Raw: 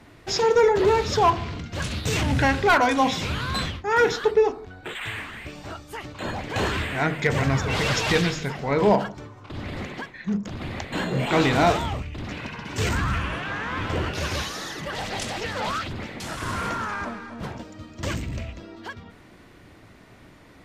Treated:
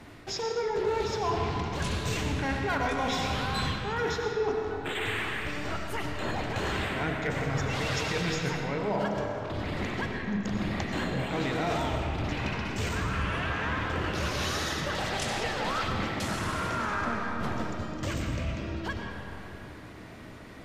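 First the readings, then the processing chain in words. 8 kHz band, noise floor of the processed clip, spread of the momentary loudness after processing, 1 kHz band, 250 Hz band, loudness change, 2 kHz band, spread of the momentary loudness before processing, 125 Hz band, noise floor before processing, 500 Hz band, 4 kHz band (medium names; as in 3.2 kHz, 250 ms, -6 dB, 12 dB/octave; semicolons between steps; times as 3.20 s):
-5.0 dB, -45 dBFS, 6 LU, -6.5 dB, -4.5 dB, -6.0 dB, -5.0 dB, 17 LU, -4.5 dB, -50 dBFS, -7.5 dB, -4.5 dB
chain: reverse; compression 6:1, threshold -31 dBFS, peak gain reduction 16.5 dB; reverse; algorithmic reverb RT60 3.1 s, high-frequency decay 0.55×, pre-delay 55 ms, DRR 1.5 dB; trim +1.5 dB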